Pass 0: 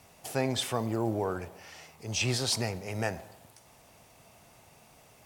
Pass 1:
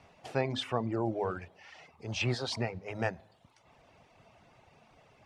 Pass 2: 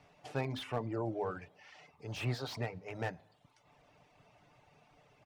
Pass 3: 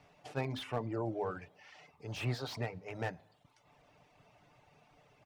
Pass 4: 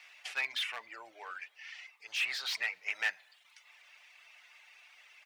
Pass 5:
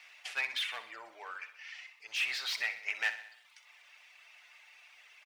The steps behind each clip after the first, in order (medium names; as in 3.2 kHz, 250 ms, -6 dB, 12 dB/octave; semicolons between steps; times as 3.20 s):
low-pass 3.4 kHz 12 dB/octave; de-hum 52.17 Hz, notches 5; reverb removal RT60 0.77 s
comb 6.8 ms, depth 40%; slew-rate limiter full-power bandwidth 50 Hz; trim -4.5 dB
attacks held to a fixed rise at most 520 dB/s
gain riding 0.5 s; resonant high-pass 2.1 kHz, resonance Q 1.8; trim +8.5 dB
feedback delay 63 ms, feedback 54%, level -12 dB